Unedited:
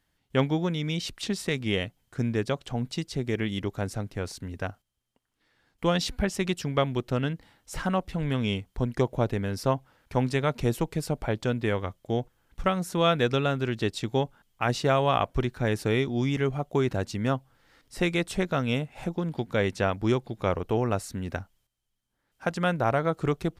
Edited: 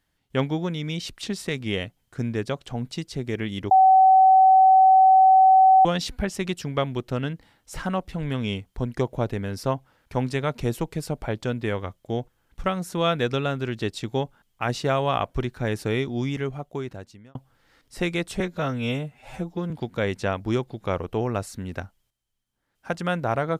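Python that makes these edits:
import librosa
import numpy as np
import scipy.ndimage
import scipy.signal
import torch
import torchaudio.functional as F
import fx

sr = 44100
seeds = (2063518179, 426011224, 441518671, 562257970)

y = fx.edit(x, sr, fx.bleep(start_s=3.71, length_s=2.14, hz=760.0, db=-11.0),
    fx.fade_out_span(start_s=16.19, length_s=1.16),
    fx.stretch_span(start_s=18.4, length_s=0.87, factor=1.5), tone=tone)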